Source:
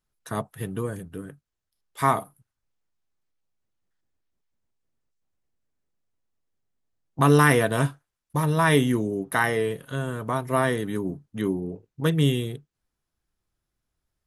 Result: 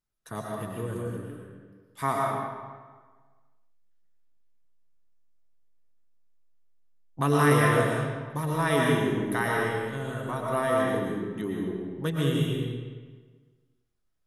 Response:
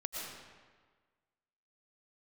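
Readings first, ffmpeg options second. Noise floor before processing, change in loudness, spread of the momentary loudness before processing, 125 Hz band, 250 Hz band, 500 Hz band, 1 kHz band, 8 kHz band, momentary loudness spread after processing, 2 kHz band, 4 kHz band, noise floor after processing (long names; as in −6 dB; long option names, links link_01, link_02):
−84 dBFS, −3.0 dB, 14 LU, −3.0 dB, −3.0 dB, −1.5 dB, −2.5 dB, −4.0 dB, 16 LU, −3.0 dB, −3.0 dB, −72 dBFS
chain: -filter_complex "[1:a]atrim=start_sample=2205[link_01];[0:a][link_01]afir=irnorm=-1:irlink=0,volume=-4dB"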